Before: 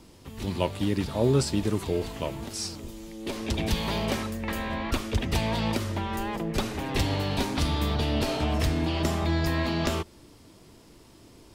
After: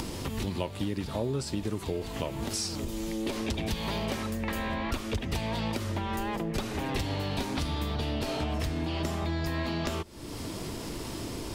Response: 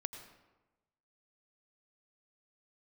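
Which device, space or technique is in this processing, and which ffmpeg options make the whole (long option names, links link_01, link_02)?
upward and downward compression: -af "acompressor=mode=upward:threshold=-30dB:ratio=2.5,acompressor=threshold=-34dB:ratio=5,volume=5dB"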